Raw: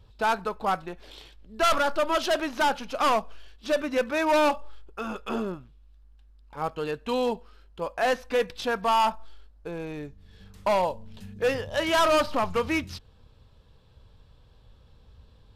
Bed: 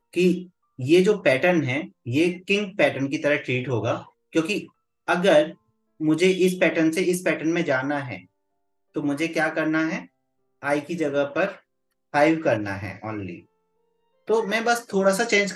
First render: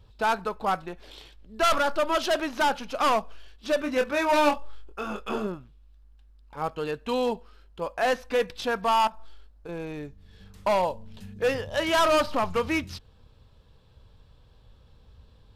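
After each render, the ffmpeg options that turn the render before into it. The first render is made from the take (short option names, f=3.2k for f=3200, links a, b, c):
-filter_complex "[0:a]asettb=1/sr,asplit=3[a][b][c];[a]atrim=end=3.834[d];[b]atrim=start=3.83:end=5.47,asetpts=PTS-STARTPTS,afade=t=in:d=0.004:c=qsin,afade=t=out:st=1.636:d=0.004:c=qsin,asplit=2[e][f];[f]adelay=24,volume=-6dB[g];[e][g]amix=inputs=2:normalize=0,atrim=end_sample=72324[h];[c]atrim=start=5.466[i];[d][h]acrossfade=d=0.004:c1=hsin:c2=qsin[j];[j][i]acrossfade=d=0.004:c1=qsin:c2=hsin,asettb=1/sr,asplit=3[k][l][m];[k]atrim=end=9.074[n];[l]atrim=start=9.07:end=9.69,asetpts=PTS-STARTPTS,afade=t=in:d=0.004:c=qsin,afade=t=out:st=0.616:d=0.004:c=qsin,acompressor=threshold=-36dB:ratio=6:attack=3.2:release=140:knee=1:detection=peak[o];[m]atrim=start=9.686[p];[n][o]acrossfade=d=0.004:c1=hsin:c2=qsin[q];[q][p]acrossfade=d=0.004:c1=qsin:c2=hsin"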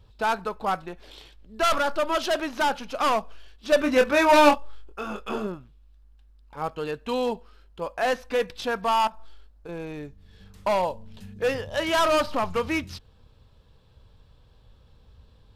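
-filter_complex "[0:a]asettb=1/sr,asplit=3[a][b][c];[a]atrim=end=3.724[d];[b]atrim=start=3.72:end=4.55,asetpts=PTS-STARTPTS,afade=t=in:d=0.004:c=qsin,afade=t=out:st=0.826:d=0.004:c=qsin,acontrast=45[e];[c]atrim=start=4.546[f];[d][e]acrossfade=d=0.004:c1=hsin:c2=qsin[g];[g][f]acrossfade=d=0.004:c1=qsin:c2=hsin"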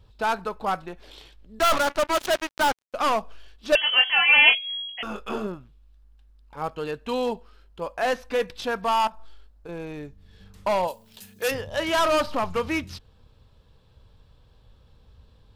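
-filter_complex "[0:a]asettb=1/sr,asplit=3[a][b][c];[a]atrim=end=1.594[d];[b]atrim=start=1.59:end=2.94,asetpts=PTS-STARTPTS,afade=t=in:d=0.004:c=qsin,afade=t=out:st=1.346:d=0.004:c=qsin,acrusher=bits=3:mix=0:aa=0.5[e];[c]atrim=start=2.936[f];[d][e]acrossfade=d=0.004:c1=hsin:c2=qsin[g];[g][f]acrossfade=d=0.004:c1=qsin:c2=hsin,asettb=1/sr,asplit=3[h][i][j];[h]atrim=end=3.754[k];[i]atrim=start=3.75:end=5.03,asetpts=PTS-STARTPTS,afade=t=in:d=0.004:c=qsin,afade=t=out:st=1.276:d=0.004:c=qsin,lowpass=f=2.8k:t=q:w=0.5098,lowpass=f=2.8k:t=q:w=0.6013,lowpass=f=2.8k:t=q:w=0.9,lowpass=f=2.8k:t=q:w=2.563,afreqshift=-3300[l];[j]atrim=start=5.026[m];[k][l]acrossfade=d=0.004:c1=hsin:c2=qsin[n];[n][m]acrossfade=d=0.004:c1=qsin:c2=hsin,asplit=3[o][p][q];[o]afade=t=out:st=10.87:d=0.02[r];[p]aemphasis=mode=production:type=riaa,afade=t=in:st=10.87:d=0.02,afade=t=out:st=11.5:d=0.02[s];[q]afade=t=in:st=11.5:d=0.02[t];[r][s][t]amix=inputs=3:normalize=0"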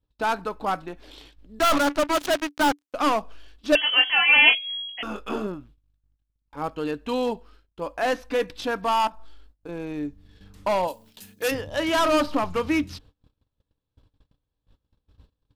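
-af "agate=range=-26dB:threshold=-50dB:ratio=16:detection=peak,equalizer=f=290:w=7.2:g=12.5"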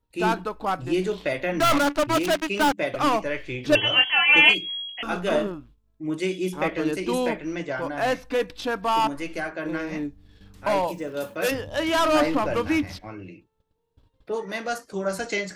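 -filter_complex "[1:a]volume=-7.5dB[a];[0:a][a]amix=inputs=2:normalize=0"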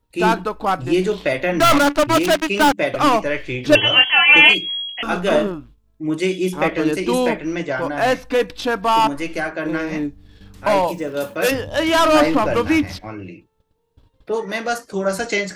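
-af "volume=6.5dB,alimiter=limit=-1dB:level=0:latency=1"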